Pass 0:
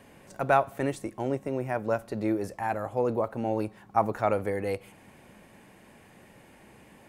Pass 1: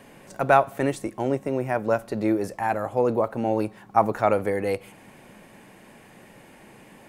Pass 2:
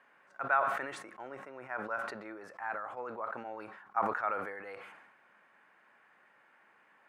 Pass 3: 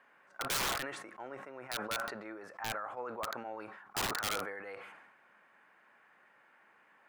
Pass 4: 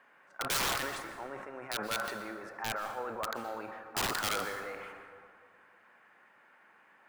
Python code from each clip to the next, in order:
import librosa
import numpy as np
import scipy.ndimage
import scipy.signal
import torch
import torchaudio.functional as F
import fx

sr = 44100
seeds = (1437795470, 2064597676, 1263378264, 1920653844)

y1 = fx.peak_eq(x, sr, hz=72.0, db=-12.0, octaves=0.59)
y1 = y1 * librosa.db_to_amplitude(5.0)
y2 = fx.bandpass_q(y1, sr, hz=1400.0, q=2.9)
y2 = fx.sustainer(y2, sr, db_per_s=48.0)
y2 = y2 * librosa.db_to_amplitude(-4.5)
y3 = (np.mod(10.0 ** (27.5 / 20.0) * y2 + 1.0, 2.0) - 1.0) / 10.0 ** (27.5 / 20.0)
y4 = fx.rev_plate(y3, sr, seeds[0], rt60_s=2.1, hf_ratio=0.45, predelay_ms=110, drr_db=8.5)
y4 = y4 * librosa.db_to_amplitude(2.0)